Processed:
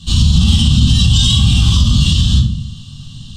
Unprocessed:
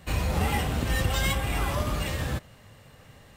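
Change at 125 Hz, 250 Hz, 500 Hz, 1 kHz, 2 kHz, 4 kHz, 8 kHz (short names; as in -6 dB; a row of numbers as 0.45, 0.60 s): +18.5 dB, +16.5 dB, n/a, -3.0 dB, +1.5 dB, +20.5 dB, +14.5 dB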